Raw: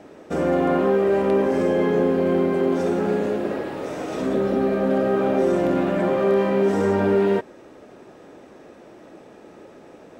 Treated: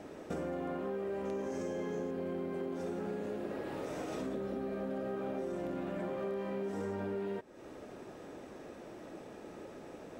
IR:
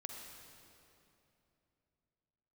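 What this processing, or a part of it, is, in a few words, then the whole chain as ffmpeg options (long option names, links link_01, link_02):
ASMR close-microphone chain: -filter_complex "[0:a]lowshelf=frequency=100:gain=6,acompressor=threshold=-33dB:ratio=5,highshelf=frequency=6800:gain=5,asettb=1/sr,asplit=3[link_01][link_02][link_03];[link_01]atrim=end=1.254[link_04];[link_02]atrim=start=1.25:end=2.11,asetpts=PTS-STARTPTS,afade=type=in:duration=0.004:curve=qsin,afade=type=out:start_time=0.856:duration=0.004:curve=qsin,equalizer=frequency=6400:width_type=o:width=0.46:gain=13.5[link_05];[link_03]atrim=start=2.106[link_06];[link_04][link_05]acrossfade=duration=0.004:curve1=hsin:curve2=qsin[link_07];[link_07][link_06]acrossfade=duration=0.004:curve1=qsin:curve2=hsin,volume=-4dB"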